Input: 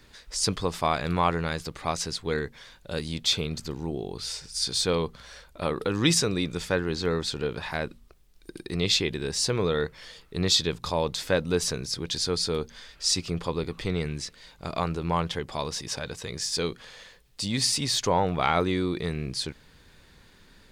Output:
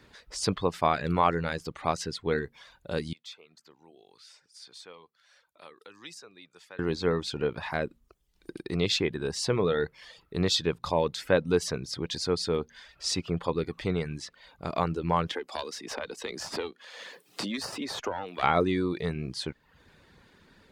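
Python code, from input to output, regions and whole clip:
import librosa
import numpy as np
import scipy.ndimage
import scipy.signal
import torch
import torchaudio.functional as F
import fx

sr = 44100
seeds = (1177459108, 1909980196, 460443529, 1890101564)

y = fx.chain(x, sr, fx.lowpass(hz=1200.0, slope=6),
    fx.differentiator(),
    fx.band_squash(depth_pct=40), at=(3.13, 6.79))
y = fx.chain(y, sr, fx.highpass(hz=230.0, slope=24),
    fx.tube_stage(drive_db=17.0, bias=0.75),
    fx.band_squash(depth_pct=100), at=(15.28, 18.43))
y = fx.dereverb_blind(y, sr, rt60_s=0.59)
y = fx.highpass(y, sr, hz=110.0, slope=6)
y = fx.high_shelf(y, sr, hz=3300.0, db=-10.5)
y = y * 10.0 ** (2.0 / 20.0)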